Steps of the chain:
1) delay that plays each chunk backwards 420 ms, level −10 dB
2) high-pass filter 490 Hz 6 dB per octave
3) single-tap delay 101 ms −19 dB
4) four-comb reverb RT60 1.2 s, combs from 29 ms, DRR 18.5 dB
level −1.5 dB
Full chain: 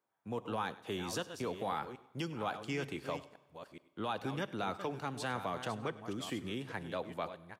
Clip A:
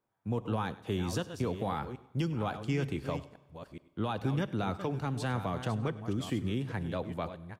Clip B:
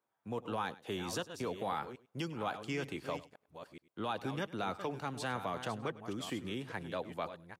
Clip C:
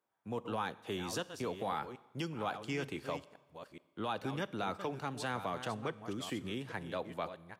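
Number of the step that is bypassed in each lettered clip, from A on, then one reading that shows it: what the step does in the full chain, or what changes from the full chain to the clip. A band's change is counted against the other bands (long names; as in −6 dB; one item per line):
2, 125 Hz band +11.0 dB
4, echo-to-direct ratio −15.5 dB to −19.0 dB
3, echo-to-direct ratio −15.5 dB to −18.5 dB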